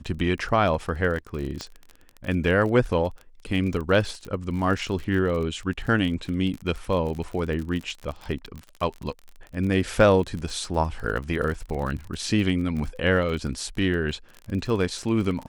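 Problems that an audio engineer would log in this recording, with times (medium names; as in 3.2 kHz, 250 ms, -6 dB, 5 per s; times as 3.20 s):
crackle 36 per s -31 dBFS
1.61 s: pop -18 dBFS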